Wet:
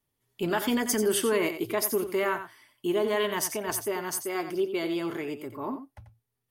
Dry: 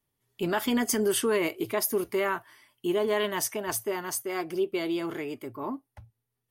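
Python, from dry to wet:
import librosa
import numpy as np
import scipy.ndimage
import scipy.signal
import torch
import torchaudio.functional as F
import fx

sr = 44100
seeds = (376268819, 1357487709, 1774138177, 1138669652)

y = x + 10.0 ** (-10.0 / 20.0) * np.pad(x, (int(89 * sr / 1000.0), 0))[:len(x)]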